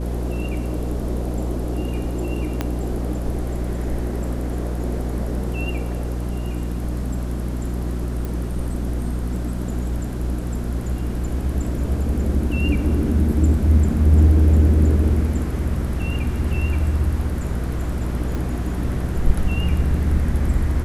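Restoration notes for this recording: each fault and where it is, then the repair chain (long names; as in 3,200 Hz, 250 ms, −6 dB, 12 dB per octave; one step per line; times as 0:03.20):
mains hum 60 Hz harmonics 6 −25 dBFS
0:02.61: click −9 dBFS
0:08.25: click
0:18.35: click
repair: click removal
hum removal 60 Hz, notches 6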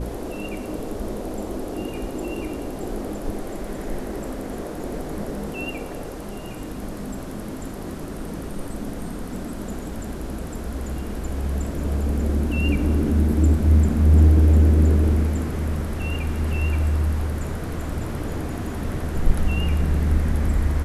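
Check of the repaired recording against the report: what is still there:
0:02.61: click
0:18.35: click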